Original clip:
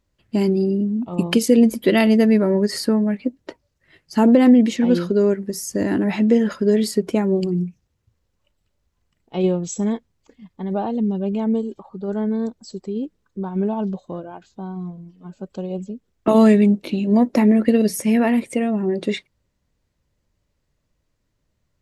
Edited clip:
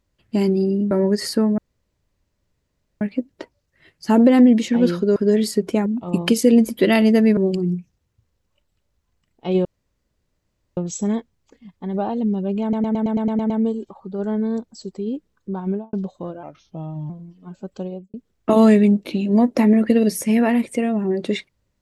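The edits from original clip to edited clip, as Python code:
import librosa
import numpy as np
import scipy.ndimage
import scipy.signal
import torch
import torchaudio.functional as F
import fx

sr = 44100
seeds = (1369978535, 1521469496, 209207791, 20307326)

y = fx.studio_fade_out(x, sr, start_s=13.53, length_s=0.29)
y = fx.studio_fade_out(y, sr, start_s=15.58, length_s=0.34)
y = fx.edit(y, sr, fx.move(start_s=0.91, length_s=1.51, to_s=7.26),
    fx.insert_room_tone(at_s=3.09, length_s=1.43),
    fx.cut(start_s=5.24, length_s=1.32),
    fx.insert_room_tone(at_s=9.54, length_s=1.12),
    fx.stutter(start_s=11.39, slice_s=0.11, count=9),
    fx.speed_span(start_s=14.32, length_s=0.56, speed=0.84), tone=tone)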